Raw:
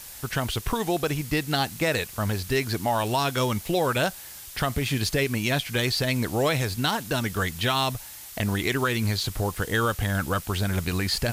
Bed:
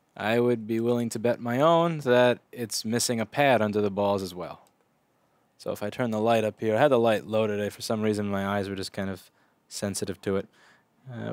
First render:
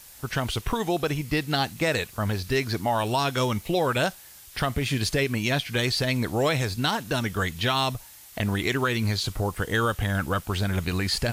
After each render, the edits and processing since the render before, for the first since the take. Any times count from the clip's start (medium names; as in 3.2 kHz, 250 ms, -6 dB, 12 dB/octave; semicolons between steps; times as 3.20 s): noise print and reduce 6 dB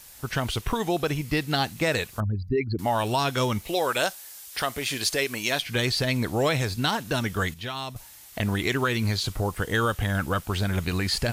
2.20–2.79 s: resonances exaggerated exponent 3; 3.68–5.62 s: tone controls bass -14 dB, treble +5 dB; 7.54–7.96 s: gain -9 dB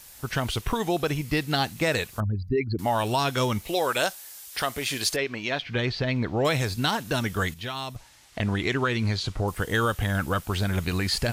5.16–6.45 s: distance through air 210 m; 7.96–9.48 s: distance through air 71 m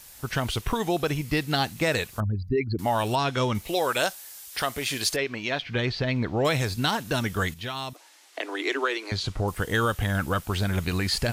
3.15–3.55 s: distance through air 67 m; 7.93–9.12 s: steep high-pass 280 Hz 96 dB/octave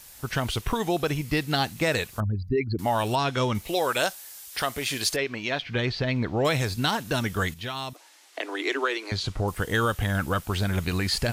no audible change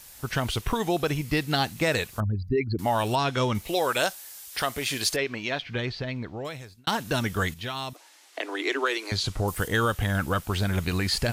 5.32–6.87 s: fade out; 8.86–9.68 s: treble shelf 6.5 kHz +9.5 dB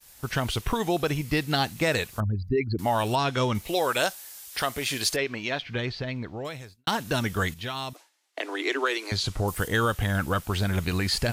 expander -43 dBFS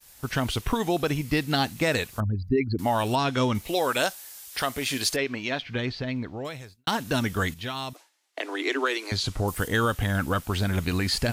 dynamic bell 260 Hz, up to +6 dB, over -46 dBFS, Q 5.4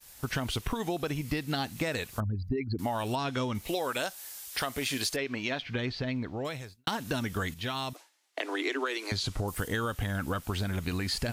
compression, threshold -28 dBFS, peak gain reduction 9.5 dB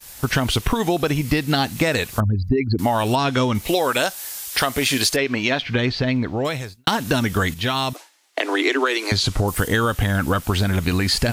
trim +12 dB; peak limiter -3 dBFS, peak gain reduction 1 dB